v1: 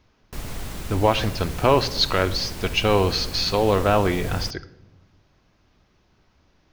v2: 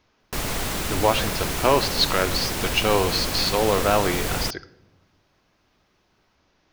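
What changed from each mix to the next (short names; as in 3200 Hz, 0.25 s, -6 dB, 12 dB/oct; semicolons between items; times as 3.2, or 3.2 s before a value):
background +10.5 dB; master: add low shelf 200 Hz -10 dB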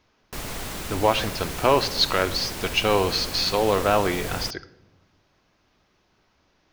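background -6.0 dB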